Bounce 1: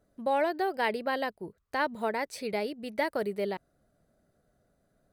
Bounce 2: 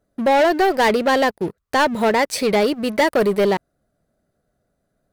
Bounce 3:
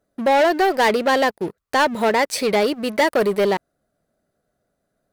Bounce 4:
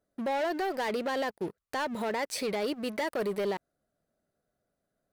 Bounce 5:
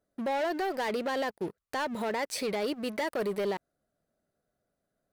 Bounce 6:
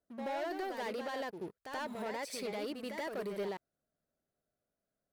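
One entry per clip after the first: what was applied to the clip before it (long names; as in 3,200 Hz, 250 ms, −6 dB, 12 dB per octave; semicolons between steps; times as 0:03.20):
leveller curve on the samples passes 3; level +6 dB
low-shelf EQ 180 Hz −7.5 dB
brickwall limiter −16 dBFS, peak gain reduction 8 dB; level −8.5 dB
no processing that can be heard
backwards echo 81 ms −6 dB; level −8.5 dB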